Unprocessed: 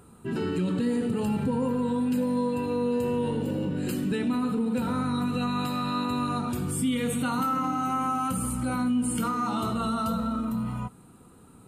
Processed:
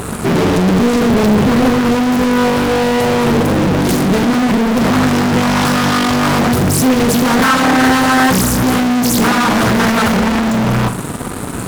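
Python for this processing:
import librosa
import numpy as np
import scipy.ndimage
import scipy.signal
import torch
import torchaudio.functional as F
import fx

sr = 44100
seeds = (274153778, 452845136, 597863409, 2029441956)

p1 = fx.dynamic_eq(x, sr, hz=2400.0, q=0.8, threshold_db=-46.0, ratio=4.0, max_db=-6)
p2 = fx.fuzz(p1, sr, gain_db=50.0, gate_db=-54.0)
p3 = p1 + (p2 * 10.0 ** (-5.5 / 20.0))
p4 = fx.room_flutter(p3, sr, wall_m=7.3, rt60_s=0.27)
p5 = fx.doppler_dist(p4, sr, depth_ms=0.81)
y = p5 * 10.0 ** (5.0 / 20.0)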